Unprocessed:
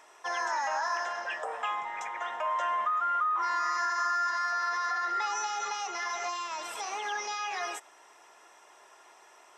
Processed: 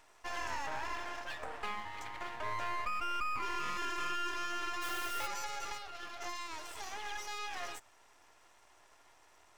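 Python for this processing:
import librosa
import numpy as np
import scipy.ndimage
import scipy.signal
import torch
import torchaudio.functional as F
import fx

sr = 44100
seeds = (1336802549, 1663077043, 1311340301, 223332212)

y = fx.high_shelf(x, sr, hz=4700.0, db=-9.0, at=(0.66, 1.08))
y = fx.quant_dither(y, sr, seeds[0], bits=6, dither='none', at=(4.81, 5.26), fade=0.02)
y = fx.fixed_phaser(y, sr, hz=1400.0, stages=8, at=(5.77, 6.2), fade=0.02)
y = np.maximum(y, 0.0)
y = fx.peak_eq(y, sr, hz=170.0, db=-11.5, octaves=0.4)
y = F.gain(torch.from_numpy(y), -3.5).numpy()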